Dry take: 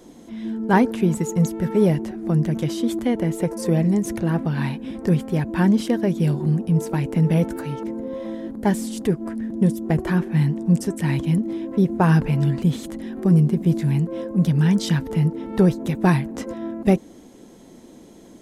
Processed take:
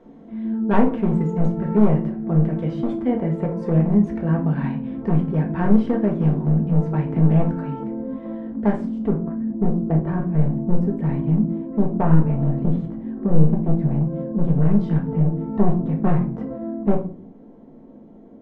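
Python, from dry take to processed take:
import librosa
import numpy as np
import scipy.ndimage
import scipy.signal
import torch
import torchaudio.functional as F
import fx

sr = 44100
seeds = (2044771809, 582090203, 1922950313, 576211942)

y = np.minimum(x, 2.0 * 10.0 ** (-16.0 / 20.0) - x)
y = fx.lowpass(y, sr, hz=fx.steps((0.0, 1600.0), (8.85, 1000.0)), slope=12)
y = fx.room_shoebox(y, sr, seeds[0], volume_m3=320.0, walls='furnished', distance_m=1.6)
y = y * librosa.db_to_amplitude(-3.0)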